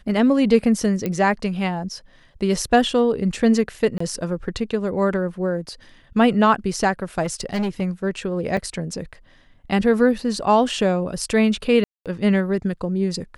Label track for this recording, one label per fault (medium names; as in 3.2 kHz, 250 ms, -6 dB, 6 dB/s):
1.060000	1.060000	pop -11 dBFS
3.980000	4.000000	dropout 24 ms
7.220000	7.820000	clipped -19.5 dBFS
8.570000	8.570000	dropout 4 ms
11.840000	12.060000	dropout 217 ms